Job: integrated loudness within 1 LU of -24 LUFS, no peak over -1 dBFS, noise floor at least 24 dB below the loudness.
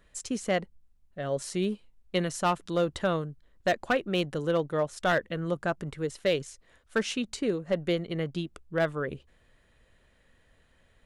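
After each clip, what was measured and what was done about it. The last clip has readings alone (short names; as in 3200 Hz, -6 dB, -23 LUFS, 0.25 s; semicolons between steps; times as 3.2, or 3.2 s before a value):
clipped 0.4%; flat tops at -18.5 dBFS; loudness -30.5 LUFS; peak -18.5 dBFS; loudness target -24.0 LUFS
-> clip repair -18.5 dBFS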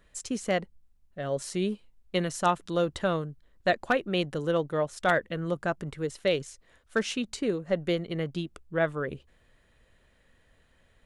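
clipped 0.0%; loudness -30.0 LUFS; peak -10.5 dBFS; loudness target -24.0 LUFS
-> gain +6 dB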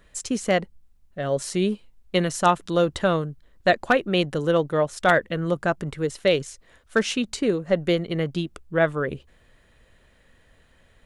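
loudness -24.0 LUFS; peak -4.5 dBFS; noise floor -59 dBFS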